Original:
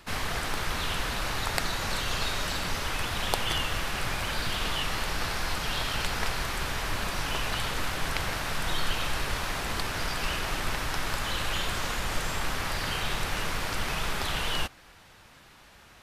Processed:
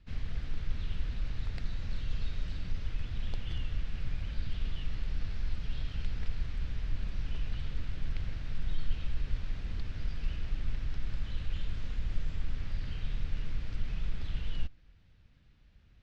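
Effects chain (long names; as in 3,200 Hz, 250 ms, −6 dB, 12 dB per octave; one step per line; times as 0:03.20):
guitar amp tone stack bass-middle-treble 10-0-1
in parallel at −11 dB: asymmetric clip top −31.5 dBFS
on the sum: high-frequency loss of the air 200 metres
notch filter 370 Hz, Q 12
level +6 dB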